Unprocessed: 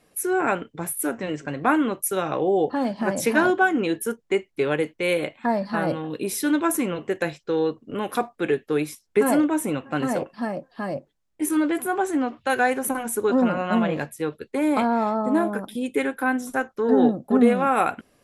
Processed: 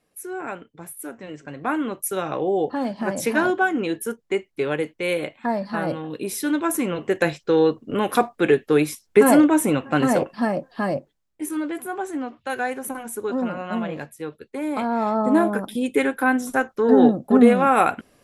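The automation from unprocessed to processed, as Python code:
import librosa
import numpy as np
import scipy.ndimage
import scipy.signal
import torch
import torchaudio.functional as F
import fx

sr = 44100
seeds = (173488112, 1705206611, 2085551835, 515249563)

y = fx.gain(x, sr, db=fx.line((1.17, -9.0), (2.1, -1.0), (6.65, -1.0), (7.28, 5.5), (10.87, 5.5), (11.49, -5.0), (14.72, -5.0), (15.22, 3.5)))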